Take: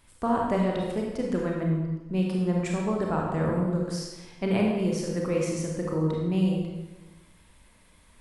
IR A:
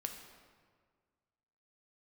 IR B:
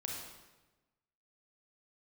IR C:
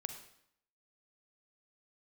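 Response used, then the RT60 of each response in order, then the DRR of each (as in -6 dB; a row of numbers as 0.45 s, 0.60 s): B; 1.7 s, 1.1 s, 0.70 s; 4.0 dB, -1.5 dB, 7.0 dB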